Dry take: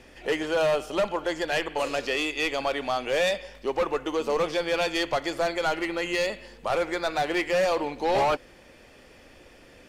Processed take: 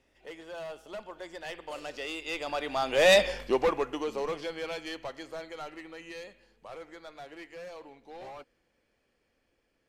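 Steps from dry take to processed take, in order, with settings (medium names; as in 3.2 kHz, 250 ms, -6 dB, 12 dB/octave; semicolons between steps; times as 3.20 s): Doppler pass-by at 3.27 s, 16 m/s, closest 2.4 m; trim +8.5 dB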